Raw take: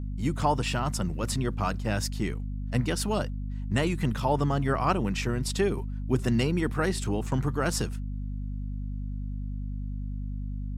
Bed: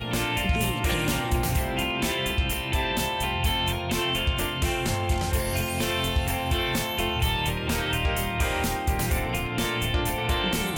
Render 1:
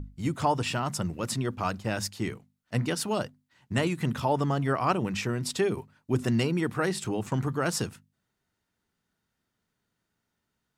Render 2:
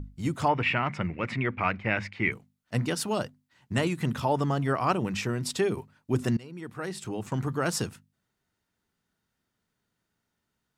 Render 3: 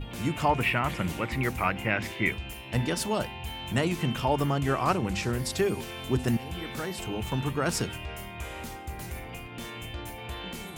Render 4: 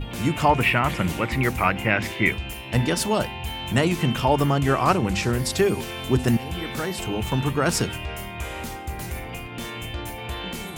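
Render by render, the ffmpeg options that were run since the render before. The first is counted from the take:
-af "bandreject=f=50:t=h:w=6,bandreject=f=100:t=h:w=6,bandreject=f=150:t=h:w=6,bandreject=f=200:t=h:w=6,bandreject=f=250:t=h:w=6"
-filter_complex "[0:a]asettb=1/sr,asplit=3[s0][s1][s2];[s0]atrim=end=0.484[s3];[s1]atrim=start=0.48:end=2.32,asetpts=PTS-STARTPTS,afade=t=in:d=0.004:c=qsin,afade=t=out:st=1.836:d=0.004:c=qsin,lowpass=f=2200:t=q:w=8.7[s4];[s2]atrim=start=2.316[s5];[s3][s4]acrossfade=d=0.004:c1=hsin:c2=qsin[s6];[s6][s5]acrossfade=d=0.004:c1=qsin:c2=hsin,asplit=2[s7][s8];[s7]atrim=end=6.37,asetpts=PTS-STARTPTS,afade=t=out:st=6.366:d=0.004:c=hsin:silence=0.0630957[s9];[s8]atrim=start=6.37,asetpts=PTS-STARTPTS,afade=t=in:d=1.22:silence=0.0630957[s10];[s9][s10]concat=n=2:v=0:a=1"
-filter_complex "[1:a]volume=0.237[s0];[0:a][s0]amix=inputs=2:normalize=0"
-af "volume=2"

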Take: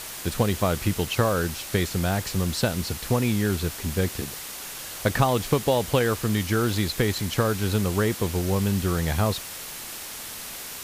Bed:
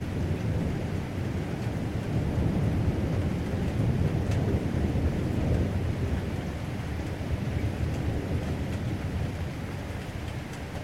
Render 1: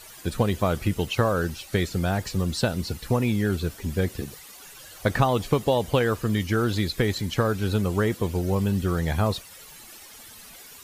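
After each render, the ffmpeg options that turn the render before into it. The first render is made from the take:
-af "afftdn=nr=13:nf=-37"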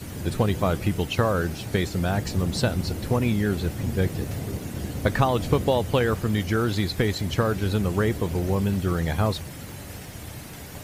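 -filter_complex "[1:a]volume=0.596[s0];[0:a][s0]amix=inputs=2:normalize=0"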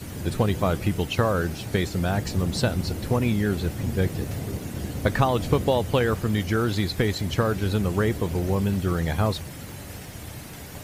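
-af anull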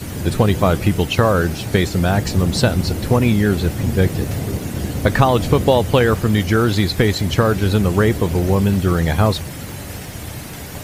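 -af "volume=2.51,alimiter=limit=0.891:level=0:latency=1"

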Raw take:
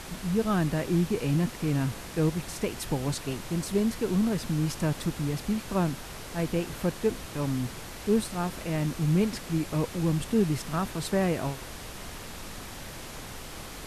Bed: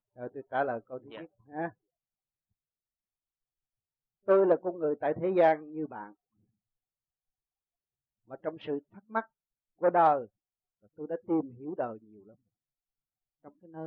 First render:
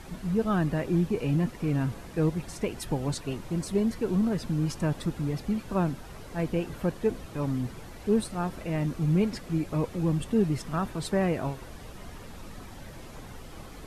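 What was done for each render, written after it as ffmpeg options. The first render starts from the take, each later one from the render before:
-af "afftdn=nr=10:nf=-41"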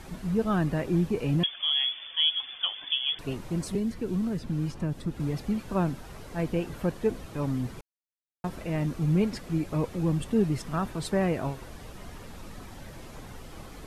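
-filter_complex "[0:a]asettb=1/sr,asplit=3[s0][s1][s2];[s0]atrim=end=1.434[s3];[s1]atrim=start=1.43:end=3.19,asetpts=PTS-STARTPTS,afade=t=in:d=0.004:c=qsin,afade=t=out:st=1.756:d=0.004:c=qsin,lowpass=f=3000:t=q:w=0.5098,lowpass=f=3000:t=q:w=0.6013,lowpass=f=3000:t=q:w=0.9,lowpass=f=3000:t=q:w=2.563,afreqshift=-3500[s4];[s2]atrim=start=3.186[s5];[s3][s4]acrossfade=d=0.004:c1=hsin:c2=qsin[s6];[s6][s5]acrossfade=d=0.004:c1=qsin:c2=hsin,asettb=1/sr,asplit=3[s7][s8][s9];[s7]atrim=end=3.754[s10];[s8]atrim=start=3.75:end=5.2,asetpts=PTS-STARTPTS,afade=t=in:d=0.004:c=qsin,afade=t=out:st=1.446:d=0.004:c=qsin,acrossover=split=430|1300|4400[s11][s12][s13][s14];[s11]acompressor=threshold=0.0501:ratio=3[s15];[s12]acompressor=threshold=0.00398:ratio=3[s16];[s13]acompressor=threshold=0.00224:ratio=3[s17];[s14]acompressor=threshold=0.00141:ratio=3[s18];[s15][s16][s17][s18]amix=inputs=4:normalize=0[s19];[s9]atrim=start=5.196[s20];[s10][s19]acrossfade=d=0.004:c1=hsin:c2=qsin[s21];[s21][s20]acrossfade=d=0.004:c1=qsin:c2=hsin,asplit=3[s22][s23][s24];[s22]atrim=end=7.81,asetpts=PTS-STARTPTS,afade=t=out:st=7.806:d=0.004:c=hsin[s25];[s23]atrim=start=7.81:end=8.44,asetpts=PTS-STARTPTS,volume=0[s26];[s24]atrim=start=8.44,asetpts=PTS-STARTPTS,afade=t=in:d=0.004:c=hsin[s27];[s25][s26][s27]concat=n=3:v=0:a=1"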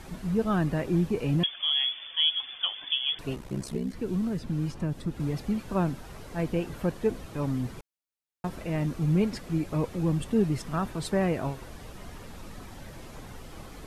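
-filter_complex "[0:a]asettb=1/sr,asplit=3[s0][s1][s2];[s0]atrim=end=3.354[s3];[s1]atrim=start=3.35:end=3.94,asetpts=PTS-STARTPTS,afade=t=in:d=0.004:c=qsin,afade=t=out:st=0.586:d=0.004:c=qsin,aeval=exprs='val(0)*sin(2*PI*32*n/s)':c=same[s4];[s2]atrim=start=3.936[s5];[s3][s4]acrossfade=d=0.004:c1=hsin:c2=qsin[s6];[s6][s5]acrossfade=d=0.004:c1=qsin:c2=hsin"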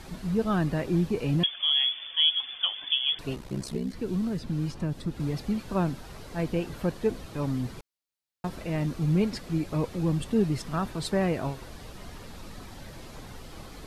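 -af "equalizer=f=4300:w=1.9:g=4.5"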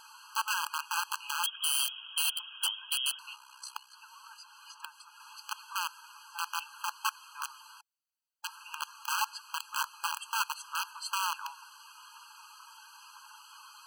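-af "aeval=exprs='(mod(10*val(0)+1,2)-1)/10':c=same,afftfilt=real='re*eq(mod(floor(b*sr/1024/820),2),1)':imag='im*eq(mod(floor(b*sr/1024/820),2),1)':win_size=1024:overlap=0.75"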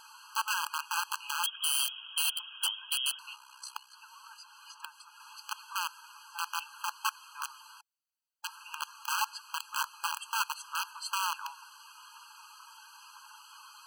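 -af anull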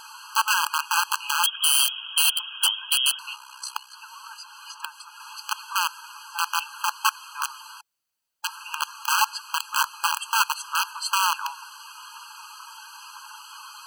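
-af "volume=3.16"

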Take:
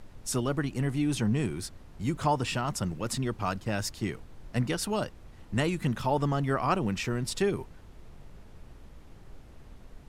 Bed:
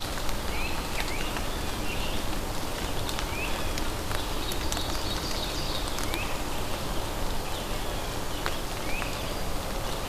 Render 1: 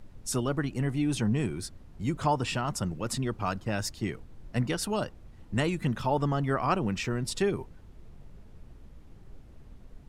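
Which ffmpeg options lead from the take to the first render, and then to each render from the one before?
-af "afftdn=nr=6:nf=-51"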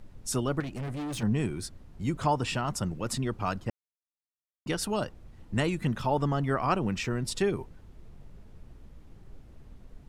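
-filter_complex "[0:a]asettb=1/sr,asplit=3[s0][s1][s2];[s0]atrim=end=0.604[s3];[s1]atrim=start=0.6:end=1.23,asetpts=PTS-STARTPTS,afade=t=in:d=0.004:c=qsin,afade=t=out:st=0.626:d=0.004:c=qsin,asoftclip=type=hard:threshold=0.0237[s4];[s2]atrim=start=1.226[s5];[s3][s4]acrossfade=d=0.004:c1=hsin:c2=qsin[s6];[s6][s5]acrossfade=d=0.004:c1=qsin:c2=hsin,asplit=3[s7][s8][s9];[s7]atrim=end=3.7,asetpts=PTS-STARTPTS,afade=t=out:st=3.696:d=0.004:c=hsin[s10];[s8]atrim=start=3.7:end=4.66,asetpts=PTS-STARTPTS,volume=0[s11];[s9]atrim=start=4.66,asetpts=PTS-STARTPTS,afade=t=in:d=0.004:c=hsin[s12];[s10][s11][s12]concat=n=3:v=0:a=1"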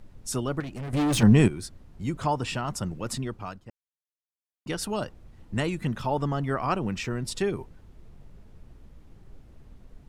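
-filter_complex "[0:a]asplit=5[s0][s1][s2][s3][s4];[s0]atrim=end=0.932[s5];[s1]atrim=start=0.928:end=1.482,asetpts=PTS-STARTPTS,volume=3.35[s6];[s2]atrim=start=1.478:end=3.61,asetpts=PTS-STARTPTS,afade=t=out:st=1.672:d=0.46:silence=0.237137[s7];[s3]atrim=start=3.61:end=4.31,asetpts=PTS-STARTPTS,volume=0.237[s8];[s4]atrim=start=4.31,asetpts=PTS-STARTPTS,afade=t=in:d=0.46:silence=0.237137[s9];[s5][s6]acrossfade=d=0.004:c1=hsin:c2=hsin[s10];[s7][s8][s9]concat=n=3:v=0:a=1[s11];[s10][s11]acrossfade=d=0.004:c1=hsin:c2=hsin"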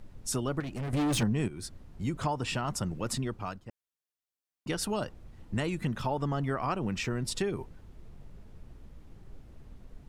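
-af "acompressor=threshold=0.0447:ratio=5"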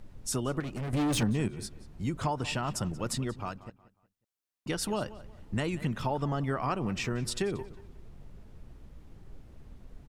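-filter_complex "[0:a]asplit=2[s0][s1];[s1]adelay=182,lowpass=f=4900:p=1,volume=0.141,asplit=2[s2][s3];[s3]adelay=182,lowpass=f=4900:p=1,volume=0.32,asplit=2[s4][s5];[s5]adelay=182,lowpass=f=4900:p=1,volume=0.32[s6];[s0][s2][s4][s6]amix=inputs=4:normalize=0"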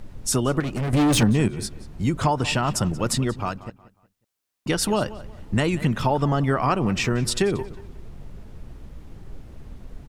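-af "volume=2.99"

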